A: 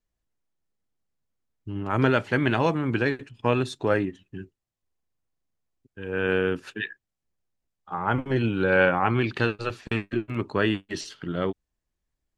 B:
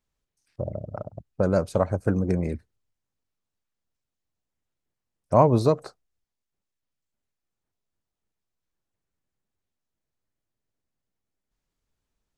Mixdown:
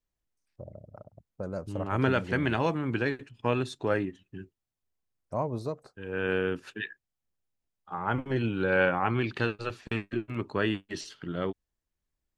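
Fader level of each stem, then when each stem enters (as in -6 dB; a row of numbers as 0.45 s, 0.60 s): -4.5 dB, -13.5 dB; 0.00 s, 0.00 s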